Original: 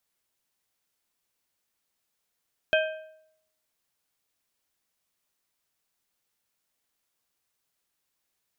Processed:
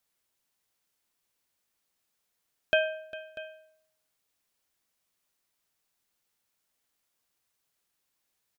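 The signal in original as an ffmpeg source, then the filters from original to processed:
-f lavfi -i "aevalsrc='0.112*pow(10,-3*t/0.74)*sin(2*PI*629*t)+0.0794*pow(10,-3*t/0.562)*sin(2*PI*1572.5*t)+0.0562*pow(10,-3*t/0.488)*sin(2*PI*2516*t)+0.0398*pow(10,-3*t/0.457)*sin(2*PI*3145*t)':d=1.55:s=44100"
-af "aecho=1:1:402|642:0.133|0.141"

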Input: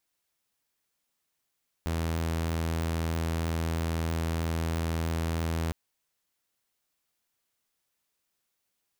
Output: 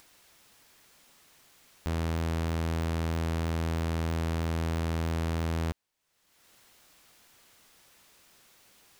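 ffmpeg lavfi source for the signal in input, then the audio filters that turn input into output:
-f lavfi -i "aevalsrc='0.0562*(2*mod(82.1*t,1)-1)':d=3.86:s=44100"
-af "highshelf=f=7.7k:g=-7,acompressor=mode=upward:threshold=-41dB:ratio=2.5"

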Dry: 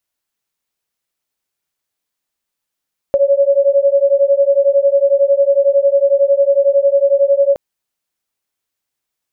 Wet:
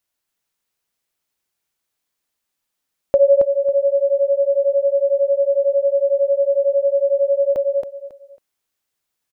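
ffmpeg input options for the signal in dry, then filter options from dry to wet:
-f lavfi -i "aevalsrc='0.251*(sin(2*PI*553*t)+sin(2*PI*564*t))':d=4.42:s=44100"
-af "aecho=1:1:274|548|822:0.531|0.122|0.0281"

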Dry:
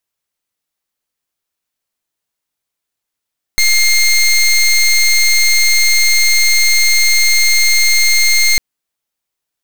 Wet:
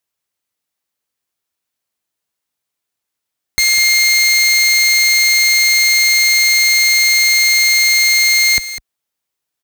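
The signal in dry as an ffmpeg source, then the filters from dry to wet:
-f lavfi -i "aevalsrc='0.316*(2*lt(mod(2120*t,1),0.19)-1)':d=5:s=44100"
-af "highpass=41,aecho=1:1:201:0.224"

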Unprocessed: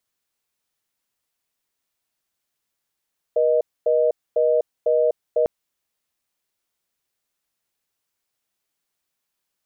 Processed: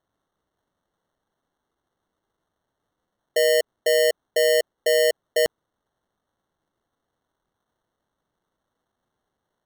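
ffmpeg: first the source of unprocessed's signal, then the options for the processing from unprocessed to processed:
-f lavfi -i "aevalsrc='0.126*(sin(2*PI*480*t)+sin(2*PI*620*t))*clip(min(mod(t,0.5),0.25-mod(t,0.5))/0.005,0,1)':d=2.1:s=44100"
-af "acrusher=samples=18:mix=1:aa=0.000001"

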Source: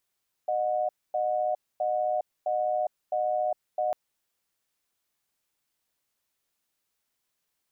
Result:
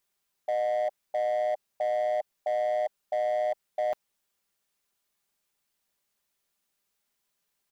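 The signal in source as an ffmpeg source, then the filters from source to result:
-f lavfi -i "aevalsrc='0.0447*(sin(2*PI*614*t)+sin(2*PI*729*t))*clip(min(mod(t,0.66),0.41-mod(t,0.66))/0.005,0,1)':d=3.45:s=44100"
-af "aecho=1:1:5:0.37,asoftclip=type=hard:threshold=-23.5dB"

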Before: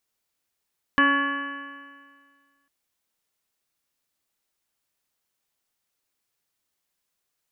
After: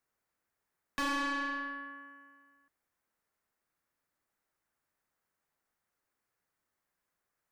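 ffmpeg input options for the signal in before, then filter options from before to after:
-f lavfi -i "aevalsrc='0.0891*pow(10,-3*t/1.81)*sin(2*PI*278.19*t)+0.0282*pow(10,-3*t/1.81)*sin(2*PI*557.55*t)+0.015*pow(10,-3*t/1.81)*sin(2*PI*839.24*t)+0.112*pow(10,-3*t/1.81)*sin(2*PI*1124.39*t)+0.0211*pow(10,-3*t/1.81)*sin(2*PI*1414.12*t)+0.141*pow(10,-3*t/1.81)*sin(2*PI*1709.52*t)+0.015*pow(10,-3*t/1.81)*sin(2*PI*2011.64*t)+0.015*pow(10,-3*t/1.81)*sin(2*PI*2321.5*t)+0.0106*pow(10,-3*t/1.81)*sin(2*PI*2640.05*t)+0.0299*pow(10,-3*t/1.81)*sin(2*PI*2968.23*t)':d=1.7:s=44100"
-filter_complex "[0:a]highshelf=f=2.3k:t=q:w=1.5:g=-8.5,acrossover=split=170|1500[a][b][c];[c]acompressor=threshold=-35dB:ratio=6[d];[a][b][d]amix=inputs=3:normalize=0,aeval=exprs='(tanh(35.5*val(0)+0.15)-tanh(0.15))/35.5':c=same"

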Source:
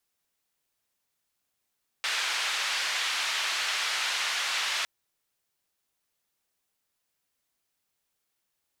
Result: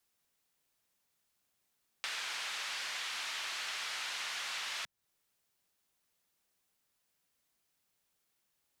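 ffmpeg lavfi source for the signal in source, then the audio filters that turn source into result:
-f lavfi -i "anoisesrc=c=white:d=2.81:r=44100:seed=1,highpass=f=1200,lowpass=f=3800,volume=-15.8dB"
-filter_complex "[0:a]equalizer=f=170:w=1.5:g=2.5,acrossover=split=180[a][b];[b]acompressor=threshold=-42dB:ratio=2.5[c];[a][c]amix=inputs=2:normalize=0"

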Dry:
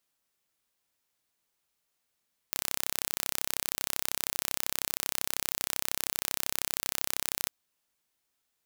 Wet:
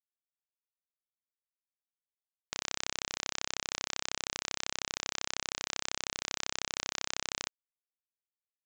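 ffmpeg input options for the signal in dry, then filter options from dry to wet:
-f lavfi -i "aevalsrc='0.75*eq(mod(n,1345),0)':d=4.97:s=44100"
-af "lowshelf=f=97:g=-11.5,aresample=16000,aeval=exprs='val(0)*gte(abs(val(0)),0.00944)':c=same,aresample=44100"

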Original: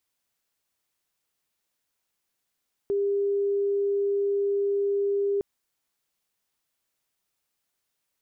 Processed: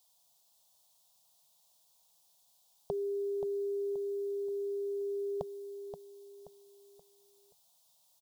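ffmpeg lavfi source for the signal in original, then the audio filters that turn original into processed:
-f lavfi -i "aevalsrc='0.0794*sin(2*PI*401*t)':d=2.51:s=44100"
-filter_complex "[0:a]firequalizer=gain_entry='entry(110,0);entry(170,8);entry(310,-27);entry(450,0);entry(690,13);entry(980,9);entry(1400,-8);entry(2100,-9);entry(3500,11)':delay=0.05:min_phase=1,asplit=2[a][b];[b]aecho=0:1:528|1056|1584|2112:0.376|0.139|0.0515|0.019[c];[a][c]amix=inputs=2:normalize=0"

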